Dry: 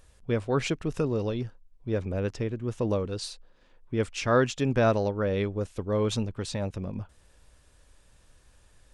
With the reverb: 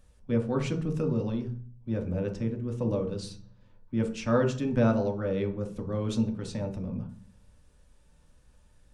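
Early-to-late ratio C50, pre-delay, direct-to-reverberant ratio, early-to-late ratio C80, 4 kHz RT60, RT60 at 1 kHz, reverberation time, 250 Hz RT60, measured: 10.0 dB, 3 ms, 2.0 dB, 15.5 dB, 0.40 s, 0.40 s, 0.45 s, 0.75 s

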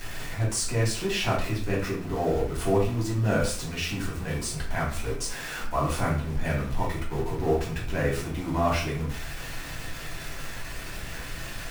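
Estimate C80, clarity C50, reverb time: 10.0 dB, 6.0 dB, 0.50 s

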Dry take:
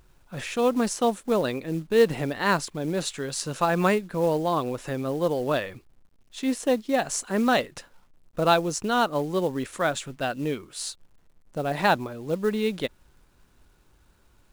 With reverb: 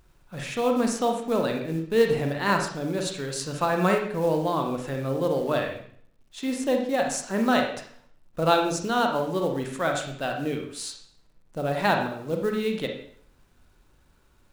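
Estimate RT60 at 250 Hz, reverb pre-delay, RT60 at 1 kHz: 0.60 s, 32 ms, 0.55 s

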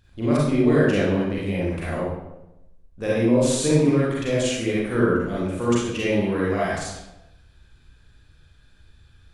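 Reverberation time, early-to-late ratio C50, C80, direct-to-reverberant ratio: 0.95 s, -3.0 dB, 2.5 dB, -7.5 dB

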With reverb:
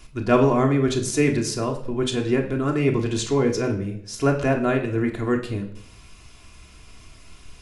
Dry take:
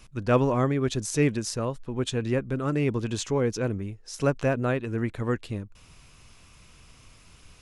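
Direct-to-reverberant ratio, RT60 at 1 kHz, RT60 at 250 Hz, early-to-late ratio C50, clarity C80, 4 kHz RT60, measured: 1.0 dB, 0.60 s, 0.75 s, 10.5 dB, 13.0 dB, 0.60 s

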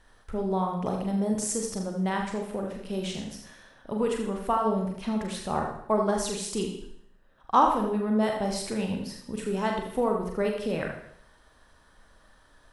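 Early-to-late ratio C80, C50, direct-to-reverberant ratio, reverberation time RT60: 7.5 dB, 5.0 dB, 1.0 dB, 0.70 s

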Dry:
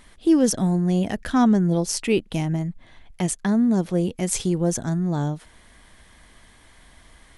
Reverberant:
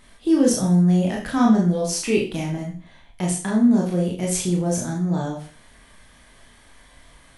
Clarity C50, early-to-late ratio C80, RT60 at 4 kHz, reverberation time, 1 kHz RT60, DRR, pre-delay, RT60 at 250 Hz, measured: 6.5 dB, 11.0 dB, 0.40 s, 0.40 s, 0.40 s, -2.5 dB, 22 ms, 0.40 s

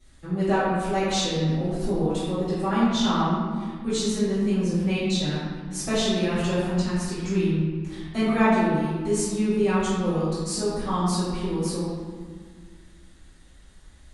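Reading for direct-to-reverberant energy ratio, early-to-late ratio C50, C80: -14.5 dB, -2.5 dB, 0.0 dB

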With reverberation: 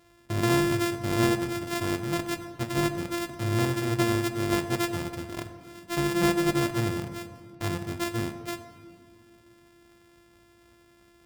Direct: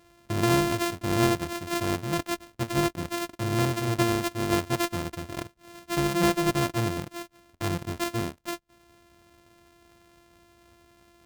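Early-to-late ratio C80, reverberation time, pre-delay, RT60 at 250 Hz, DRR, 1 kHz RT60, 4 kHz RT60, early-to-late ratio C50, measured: 11.0 dB, 2.1 s, 8 ms, 3.1 s, 7.5 dB, 1.9 s, 1.2 s, 10.5 dB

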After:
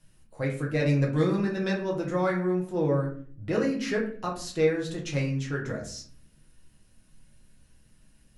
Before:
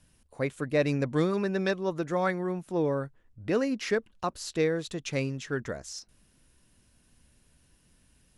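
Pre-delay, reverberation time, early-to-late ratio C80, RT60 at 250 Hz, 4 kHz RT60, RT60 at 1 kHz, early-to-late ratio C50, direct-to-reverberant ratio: 6 ms, 0.50 s, 12.5 dB, 0.70 s, 0.30 s, 0.40 s, 8.0 dB, -2.5 dB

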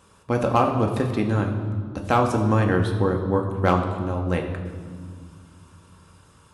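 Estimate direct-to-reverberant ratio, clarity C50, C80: 2.0 dB, 7.0 dB, 8.0 dB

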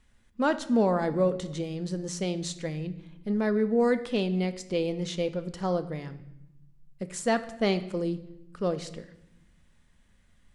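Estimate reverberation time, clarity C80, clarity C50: 0.85 s, 16.5 dB, 14.0 dB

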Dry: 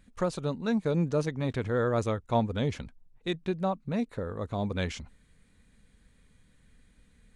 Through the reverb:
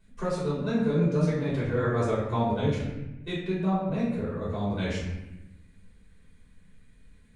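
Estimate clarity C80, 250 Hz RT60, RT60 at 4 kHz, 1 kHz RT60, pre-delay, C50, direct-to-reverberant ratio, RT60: 4.0 dB, 1.3 s, 0.70 s, 0.90 s, 3 ms, 1.5 dB, -9.5 dB, 1.0 s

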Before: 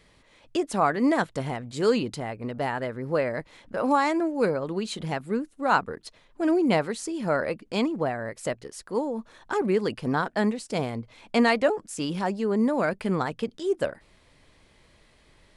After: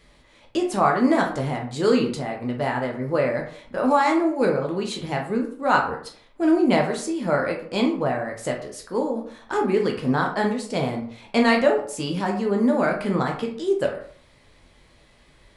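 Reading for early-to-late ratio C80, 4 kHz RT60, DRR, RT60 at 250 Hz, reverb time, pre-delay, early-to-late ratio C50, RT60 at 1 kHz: 12.0 dB, 0.35 s, 1.0 dB, 0.55 s, 0.55 s, 10 ms, 7.5 dB, 0.50 s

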